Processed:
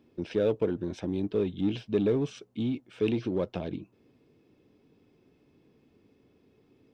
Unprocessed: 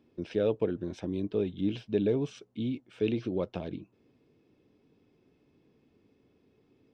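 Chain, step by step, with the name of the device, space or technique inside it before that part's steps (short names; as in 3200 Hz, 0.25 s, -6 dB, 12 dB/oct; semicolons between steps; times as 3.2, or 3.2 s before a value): parallel distortion (in parallel at -8 dB: hard clip -30 dBFS, distortion -7 dB)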